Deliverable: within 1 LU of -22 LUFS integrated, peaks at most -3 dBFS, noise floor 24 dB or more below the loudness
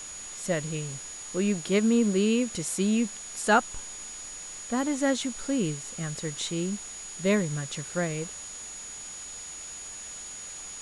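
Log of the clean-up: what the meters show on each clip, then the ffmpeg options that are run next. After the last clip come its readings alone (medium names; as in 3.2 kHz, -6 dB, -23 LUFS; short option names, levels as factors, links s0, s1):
steady tone 6.8 kHz; tone level -39 dBFS; noise floor -41 dBFS; noise floor target -54 dBFS; loudness -29.5 LUFS; peak level -11.0 dBFS; loudness target -22.0 LUFS
-> -af "bandreject=f=6800:w=30"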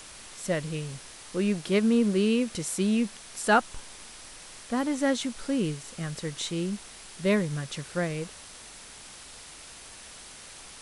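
steady tone not found; noise floor -47 dBFS; noise floor target -53 dBFS
-> -af "afftdn=nr=6:nf=-47"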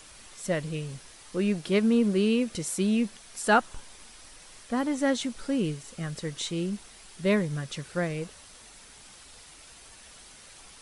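noise floor -51 dBFS; noise floor target -53 dBFS
-> -af "afftdn=nr=6:nf=-51"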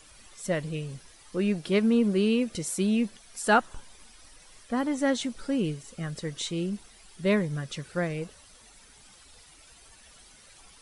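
noise floor -54 dBFS; loudness -28.5 LUFS; peak level -11.0 dBFS; loudness target -22.0 LUFS
-> -af "volume=2.11"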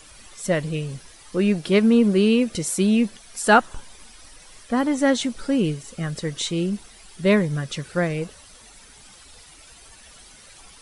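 loudness -22.0 LUFS; peak level -4.5 dBFS; noise floor -48 dBFS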